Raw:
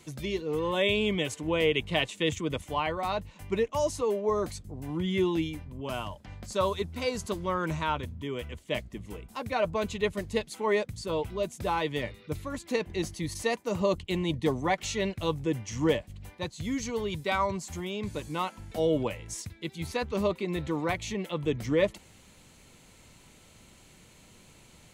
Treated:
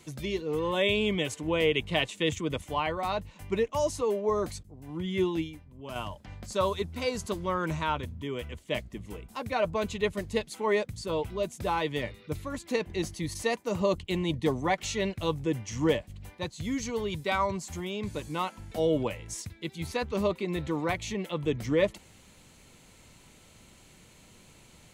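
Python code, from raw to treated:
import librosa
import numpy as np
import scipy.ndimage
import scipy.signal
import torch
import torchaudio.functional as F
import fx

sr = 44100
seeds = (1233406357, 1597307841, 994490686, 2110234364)

y = fx.upward_expand(x, sr, threshold_db=-43.0, expansion=1.5, at=(4.63, 5.96))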